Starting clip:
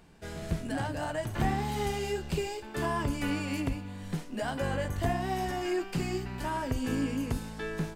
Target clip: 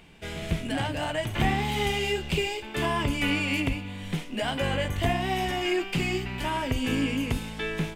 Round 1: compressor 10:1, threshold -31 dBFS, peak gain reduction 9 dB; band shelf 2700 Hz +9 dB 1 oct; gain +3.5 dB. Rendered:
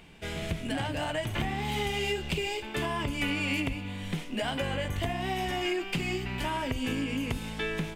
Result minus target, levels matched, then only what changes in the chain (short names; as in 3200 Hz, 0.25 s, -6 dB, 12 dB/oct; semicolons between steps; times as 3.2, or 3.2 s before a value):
compressor: peak gain reduction +9 dB
remove: compressor 10:1, threshold -31 dBFS, peak gain reduction 9 dB